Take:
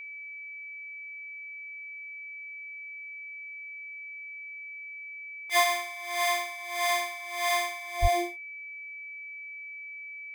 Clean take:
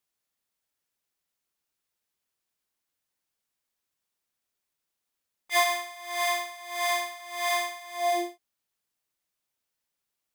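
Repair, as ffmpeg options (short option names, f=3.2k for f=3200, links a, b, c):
-filter_complex "[0:a]bandreject=f=2.3k:w=30,asplit=3[a][b][c];[a]afade=t=out:st=8.01:d=0.02[d];[b]highpass=f=140:w=0.5412,highpass=f=140:w=1.3066,afade=t=in:st=8.01:d=0.02,afade=t=out:st=8.13:d=0.02[e];[c]afade=t=in:st=8.13:d=0.02[f];[d][e][f]amix=inputs=3:normalize=0"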